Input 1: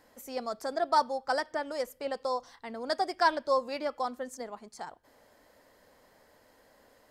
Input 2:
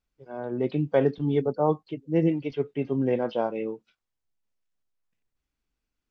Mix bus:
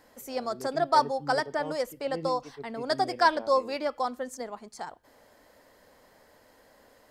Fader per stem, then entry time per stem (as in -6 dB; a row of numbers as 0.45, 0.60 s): +3.0, -15.5 dB; 0.00, 0.00 s